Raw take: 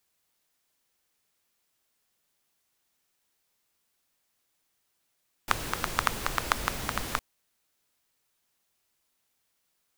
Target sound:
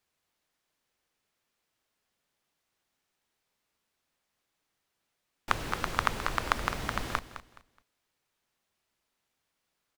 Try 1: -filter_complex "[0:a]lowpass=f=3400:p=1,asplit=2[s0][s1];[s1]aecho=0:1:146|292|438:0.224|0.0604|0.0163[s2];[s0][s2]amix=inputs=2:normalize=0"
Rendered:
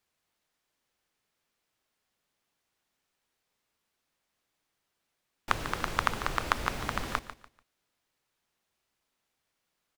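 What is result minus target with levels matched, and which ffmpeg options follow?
echo 65 ms early
-filter_complex "[0:a]lowpass=f=3400:p=1,asplit=2[s0][s1];[s1]aecho=0:1:211|422|633:0.224|0.0604|0.0163[s2];[s0][s2]amix=inputs=2:normalize=0"

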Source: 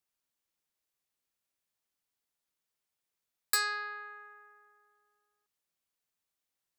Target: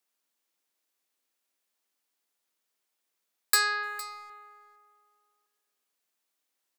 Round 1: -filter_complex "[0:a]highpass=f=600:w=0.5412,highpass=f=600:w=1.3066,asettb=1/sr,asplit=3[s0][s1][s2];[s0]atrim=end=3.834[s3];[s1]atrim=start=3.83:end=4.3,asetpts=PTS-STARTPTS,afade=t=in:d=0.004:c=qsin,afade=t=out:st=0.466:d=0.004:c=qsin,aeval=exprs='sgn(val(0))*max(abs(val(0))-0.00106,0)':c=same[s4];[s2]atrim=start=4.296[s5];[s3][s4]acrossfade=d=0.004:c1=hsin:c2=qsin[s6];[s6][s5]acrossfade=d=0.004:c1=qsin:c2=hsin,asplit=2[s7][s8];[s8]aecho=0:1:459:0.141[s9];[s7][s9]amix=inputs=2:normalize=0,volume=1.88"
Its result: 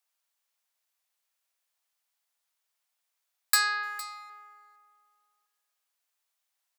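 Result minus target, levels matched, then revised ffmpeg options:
250 Hz band -13.5 dB
-filter_complex "[0:a]highpass=f=220:w=0.5412,highpass=f=220:w=1.3066,asettb=1/sr,asplit=3[s0][s1][s2];[s0]atrim=end=3.834[s3];[s1]atrim=start=3.83:end=4.3,asetpts=PTS-STARTPTS,afade=t=in:d=0.004:c=qsin,afade=t=out:st=0.466:d=0.004:c=qsin,aeval=exprs='sgn(val(0))*max(abs(val(0))-0.00106,0)':c=same[s4];[s2]atrim=start=4.296[s5];[s3][s4]acrossfade=d=0.004:c1=hsin:c2=qsin[s6];[s6][s5]acrossfade=d=0.004:c1=qsin:c2=hsin,asplit=2[s7][s8];[s8]aecho=0:1:459:0.141[s9];[s7][s9]amix=inputs=2:normalize=0,volume=1.88"

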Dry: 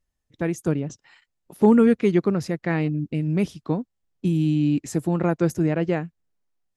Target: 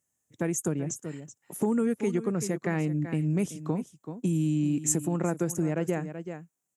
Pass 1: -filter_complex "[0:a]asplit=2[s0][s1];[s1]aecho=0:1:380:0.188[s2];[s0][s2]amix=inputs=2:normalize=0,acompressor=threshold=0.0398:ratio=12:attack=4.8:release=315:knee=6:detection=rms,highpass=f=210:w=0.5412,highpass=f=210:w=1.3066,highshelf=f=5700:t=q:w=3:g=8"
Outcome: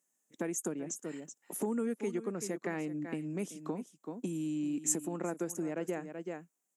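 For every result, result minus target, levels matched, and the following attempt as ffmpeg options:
125 Hz band -7.5 dB; compression: peak gain reduction +6.5 dB
-filter_complex "[0:a]asplit=2[s0][s1];[s1]aecho=0:1:380:0.188[s2];[s0][s2]amix=inputs=2:normalize=0,acompressor=threshold=0.0398:ratio=12:attack=4.8:release=315:knee=6:detection=rms,highpass=f=100:w=0.5412,highpass=f=100:w=1.3066,highshelf=f=5700:t=q:w=3:g=8"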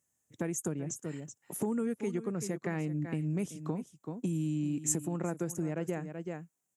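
compression: peak gain reduction +6.5 dB
-filter_complex "[0:a]asplit=2[s0][s1];[s1]aecho=0:1:380:0.188[s2];[s0][s2]amix=inputs=2:normalize=0,acompressor=threshold=0.0891:ratio=12:attack=4.8:release=315:knee=6:detection=rms,highpass=f=100:w=0.5412,highpass=f=100:w=1.3066,highshelf=f=5700:t=q:w=3:g=8"

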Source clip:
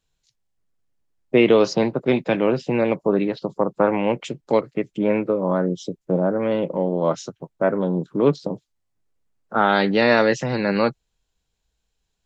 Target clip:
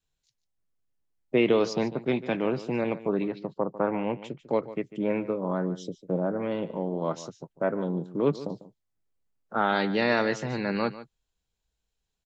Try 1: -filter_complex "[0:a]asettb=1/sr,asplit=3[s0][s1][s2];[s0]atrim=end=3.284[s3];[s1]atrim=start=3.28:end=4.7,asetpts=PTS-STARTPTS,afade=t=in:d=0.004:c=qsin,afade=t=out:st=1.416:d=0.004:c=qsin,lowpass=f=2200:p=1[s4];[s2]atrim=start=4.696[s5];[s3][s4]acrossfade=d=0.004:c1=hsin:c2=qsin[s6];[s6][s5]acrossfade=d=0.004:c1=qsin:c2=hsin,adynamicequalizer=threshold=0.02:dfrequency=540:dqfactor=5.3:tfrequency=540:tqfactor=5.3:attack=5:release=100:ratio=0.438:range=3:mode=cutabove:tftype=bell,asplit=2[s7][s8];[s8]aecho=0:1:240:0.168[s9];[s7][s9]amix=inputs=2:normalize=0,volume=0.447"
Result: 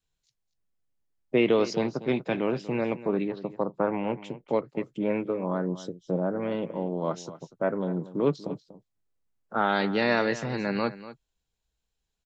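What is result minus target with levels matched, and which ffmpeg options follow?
echo 93 ms late
-filter_complex "[0:a]asettb=1/sr,asplit=3[s0][s1][s2];[s0]atrim=end=3.284[s3];[s1]atrim=start=3.28:end=4.7,asetpts=PTS-STARTPTS,afade=t=in:d=0.004:c=qsin,afade=t=out:st=1.416:d=0.004:c=qsin,lowpass=f=2200:p=1[s4];[s2]atrim=start=4.696[s5];[s3][s4]acrossfade=d=0.004:c1=hsin:c2=qsin[s6];[s6][s5]acrossfade=d=0.004:c1=qsin:c2=hsin,adynamicequalizer=threshold=0.02:dfrequency=540:dqfactor=5.3:tfrequency=540:tqfactor=5.3:attack=5:release=100:ratio=0.438:range=3:mode=cutabove:tftype=bell,asplit=2[s7][s8];[s8]aecho=0:1:147:0.168[s9];[s7][s9]amix=inputs=2:normalize=0,volume=0.447"

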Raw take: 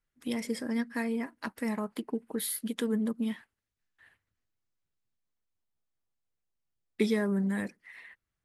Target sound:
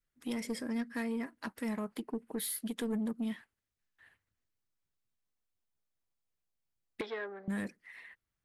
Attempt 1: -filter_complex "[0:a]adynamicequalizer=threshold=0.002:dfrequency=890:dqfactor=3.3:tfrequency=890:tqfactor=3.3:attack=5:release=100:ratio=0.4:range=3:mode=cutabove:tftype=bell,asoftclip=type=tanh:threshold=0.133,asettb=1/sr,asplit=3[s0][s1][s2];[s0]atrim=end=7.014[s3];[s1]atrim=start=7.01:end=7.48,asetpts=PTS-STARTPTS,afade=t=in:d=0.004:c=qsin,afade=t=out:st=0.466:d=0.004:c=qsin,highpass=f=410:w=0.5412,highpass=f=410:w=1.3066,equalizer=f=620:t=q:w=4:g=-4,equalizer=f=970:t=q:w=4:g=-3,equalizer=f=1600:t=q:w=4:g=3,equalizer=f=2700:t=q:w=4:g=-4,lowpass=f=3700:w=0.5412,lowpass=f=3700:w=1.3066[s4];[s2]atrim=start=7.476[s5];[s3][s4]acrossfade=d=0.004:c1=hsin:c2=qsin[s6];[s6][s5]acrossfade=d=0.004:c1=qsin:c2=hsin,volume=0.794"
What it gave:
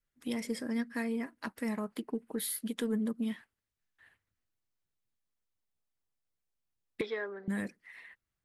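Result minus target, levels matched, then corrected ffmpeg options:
saturation: distortion -11 dB
-filter_complex "[0:a]adynamicequalizer=threshold=0.002:dfrequency=890:dqfactor=3.3:tfrequency=890:tqfactor=3.3:attack=5:release=100:ratio=0.4:range=3:mode=cutabove:tftype=bell,asoftclip=type=tanh:threshold=0.0473,asettb=1/sr,asplit=3[s0][s1][s2];[s0]atrim=end=7.014[s3];[s1]atrim=start=7.01:end=7.48,asetpts=PTS-STARTPTS,afade=t=in:d=0.004:c=qsin,afade=t=out:st=0.466:d=0.004:c=qsin,highpass=f=410:w=0.5412,highpass=f=410:w=1.3066,equalizer=f=620:t=q:w=4:g=-4,equalizer=f=970:t=q:w=4:g=-3,equalizer=f=1600:t=q:w=4:g=3,equalizer=f=2700:t=q:w=4:g=-4,lowpass=f=3700:w=0.5412,lowpass=f=3700:w=1.3066[s4];[s2]atrim=start=7.476[s5];[s3][s4]acrossfade=d=0.004:c1=hsin:c2=qsin[s6];[s6][s5]acrossfade=d=0.004:c1=qsin:c2=hsin,volume=0.794"

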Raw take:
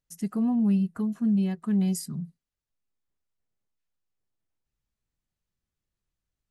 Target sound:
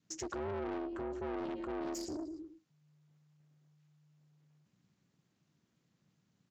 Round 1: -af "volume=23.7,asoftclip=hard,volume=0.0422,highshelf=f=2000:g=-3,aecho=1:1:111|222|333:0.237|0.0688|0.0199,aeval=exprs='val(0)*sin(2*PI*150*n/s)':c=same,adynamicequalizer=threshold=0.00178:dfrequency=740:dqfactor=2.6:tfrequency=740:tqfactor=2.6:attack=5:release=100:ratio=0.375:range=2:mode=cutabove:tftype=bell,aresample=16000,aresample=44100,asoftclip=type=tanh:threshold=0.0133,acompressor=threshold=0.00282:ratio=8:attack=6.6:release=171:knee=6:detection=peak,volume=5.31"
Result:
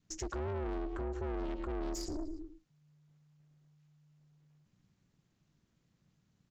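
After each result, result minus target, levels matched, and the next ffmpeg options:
overload inside the chain: distortion +30 dB; 125 Hz band +8.0 dB
-af "volume=7.5,asoftclip=hard,volume=0.133,highshelf=f=2000:g=-3,aecho=1:1:111|222|333:0.237|0.0688|0.0199,aeval=exprs='val(0)*sin(2*PI*150*n/s)':c=same,adynamicequalizer=threshold=0.00178:dfrequency=740:dqfactor=2.6:tfrequency=740:tqfactor=2.6:attack=5:release=100:ratio=0.375:range=2:mode=cutabove:tftype=bell,aresample=16000,aresample=44100,asoftclip=type=tanh:threshold=0.0133,acompressor=threshold=0.00282:ratio=8:attack=6.6:release=171:knee=6:detection=peak,volume=5.31"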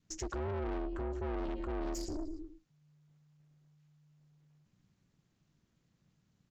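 125 Hz band +8.0 dB
-af "volume=7.5,asoftclip=hard,volume=0.133,highshelf=f=2000:g=-3,aecho=1:1:111|222|333:0.237|0.0688|0.0199,aeval=exprs='val(0)*sin(2*PI*150*n/s)':c=same,adynamicequalizer=threshold=0.00178:dfrequency=740:dqfactor=2.6:tfrequency=740:tqfactor=2.6:attack=5:release=100:ratio=0.375:range=2:mode=cutabove:tftype=bell,aresample=16000,aresample=44100,asoftclip=type=tanh:threshold=0.0133,acompressor=threshold=0.00282:ratio=8:attack=6.6:release=171:knee=6:detection=peak,highpass=130,volume=5.31"

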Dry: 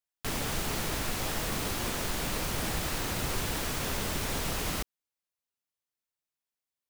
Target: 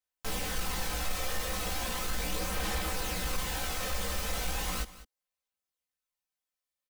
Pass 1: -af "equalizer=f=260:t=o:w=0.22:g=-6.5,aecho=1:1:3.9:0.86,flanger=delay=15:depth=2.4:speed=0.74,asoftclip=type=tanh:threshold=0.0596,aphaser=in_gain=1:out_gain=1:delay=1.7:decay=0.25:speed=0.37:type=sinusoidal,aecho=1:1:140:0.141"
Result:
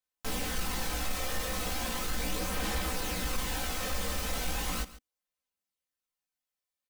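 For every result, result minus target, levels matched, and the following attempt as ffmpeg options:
echo 60 ms early; 250 Hz band +2.5 dB
-af "equalizer=f=260:t=o:w=0.22:g=-6.5,aecho=1:1:3.9:0.86,flanger=delay=15:depth=2.4:speed=0.74,asoftclip=type=tanh:threshold=0.0596,aphaser=in_gain=1:out_gain=1:delay=1.7:decay=0.25:speed=0.37:type=sinusoidal,aecho=1:1:200:0.141"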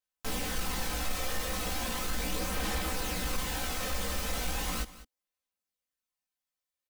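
250 Hz band +2.5 dB
-af "equalizer=f=260:t=o:w=0.22:g=-17.5,aecho=1:1:3.9:0.86,flanger=delay=15:depth=2.4:speed=0.74,asoftclip=type=tanh:threshold=0.0596,aphaser=in_gain=1:out_gain=1:delay=1.7:decay=0.25:speed=0.37:type=sinusoidal,aecho=1:1:200:0.141"

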